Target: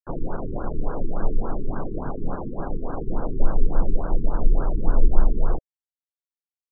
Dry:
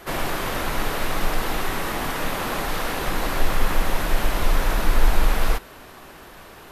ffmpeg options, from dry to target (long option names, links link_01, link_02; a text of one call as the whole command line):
ffmpeg -i in.wav -filter_complex "[0:a]equalizer=frequency=2000:width=0.75:gain=-14.5,aexciter=amount=4.9:drive=8.5:freq=12000,asplit=4[link_01][link_02][link_03][link_04];[link_02]asetrate=22050,aresample=44100,atempo=2,volume=-15dB[link_05];[link_03]asetrate=29433,aresample=44100,atempo=1.49831,volume=-13dB[link_06];[link_04]asetrate=33038,aresample=44100,atempo=1.33484,volume=-7dB[link_07];[link_01][link_05][link_06][link_07]amix=inputs=4:normalize=0,acrusher=bits=3:mix=0:aa=0.000001,afftfilt=real='re*lt(b*sr/1024,430*pow(1700/430,0.5+0.5*sin(2*PI*3.5*pts/sr)))':imag='im*lt(b*sr/1024,430*pow(1700/430,0.5+0.5*sin(2*PI*3.5*pts/sr)))':win_size=1024:overlap=0.75,volume=-1dB" out.wav